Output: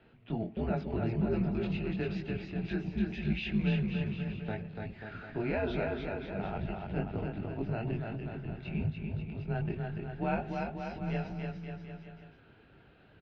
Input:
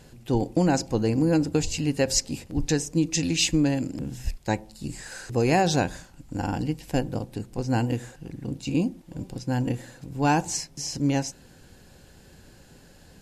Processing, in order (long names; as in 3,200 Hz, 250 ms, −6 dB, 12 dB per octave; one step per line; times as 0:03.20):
brickwall limiter −16.5 dBFS, peak gain reduction 7.5 dB
multi-voice chorus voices 4, 0.51 Hz, delay 21 ms, depth 2.7 ms
single-sideband voice off tune −110 Hz 190–3,300 Hz
on a send: bouncing-ball delay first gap 290 ms, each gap 0.85×, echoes 5
on the sum: level −3 dB